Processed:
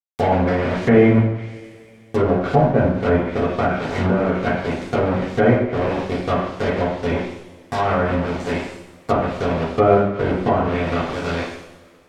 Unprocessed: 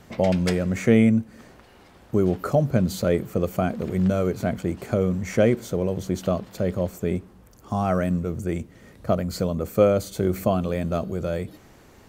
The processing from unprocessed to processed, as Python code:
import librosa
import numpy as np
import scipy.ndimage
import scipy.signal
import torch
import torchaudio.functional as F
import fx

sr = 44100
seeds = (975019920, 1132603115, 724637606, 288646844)

y = fx.spec_clip(x, sr, under_db=13)
y = np.where(np.abs(y) >= 10.0 ** (-24.0 / 20.0), y, 0.0)
y = fx.peak_eq(y, sr, hz=14000.0, db=-6.0, octaves=0.2)
y = fx.rev_double_slope(y, sr, seeds[0], early_s=0.75, late_s=2.7, knee_db=-21, drr_db=-7.0)
y = fx.env_lowpass_down(y, sr, base_hz=1400.0, full_db=-12.0)
y = y * 10.0 ** (-1.5 / 20.0)